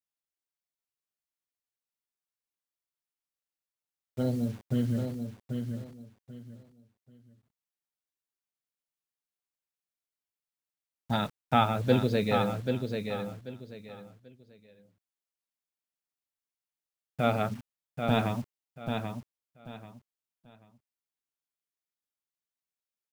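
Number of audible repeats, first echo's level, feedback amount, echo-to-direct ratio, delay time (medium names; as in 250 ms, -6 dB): 3, -6.0 dB, 25%, -5.5 dB, 787 ms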